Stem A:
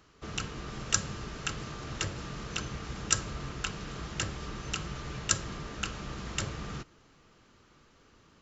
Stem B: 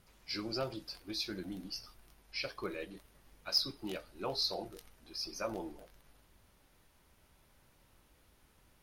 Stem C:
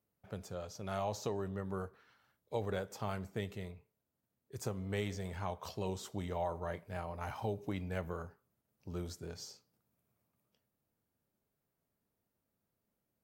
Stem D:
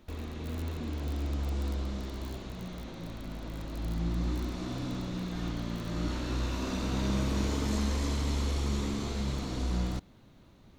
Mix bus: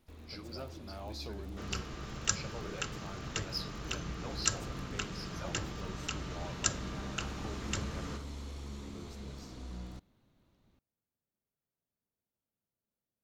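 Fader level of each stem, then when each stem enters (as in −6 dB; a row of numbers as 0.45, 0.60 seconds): −3.5, −8.0, −9.5, −13.0 decibels; 1.35, 0.00, 0.00, 0.00 seconds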